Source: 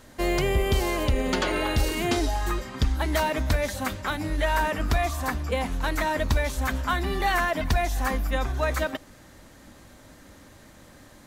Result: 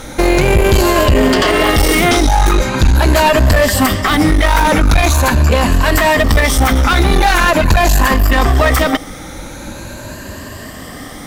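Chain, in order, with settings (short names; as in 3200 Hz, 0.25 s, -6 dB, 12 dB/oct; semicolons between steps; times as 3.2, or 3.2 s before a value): moving spectral ripple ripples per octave 1.4, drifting +0.43 Hz, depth 10 dB; one-sided clip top -29 dBFS, bottom -14 dBFS; maximiser +21 dB; gain -1 dB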